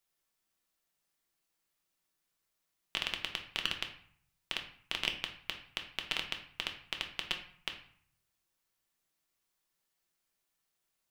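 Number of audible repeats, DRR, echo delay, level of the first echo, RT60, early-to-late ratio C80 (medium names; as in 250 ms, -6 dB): no echo, 3.5 dB, no echo, no echo, 0.55 s, 12.5 dB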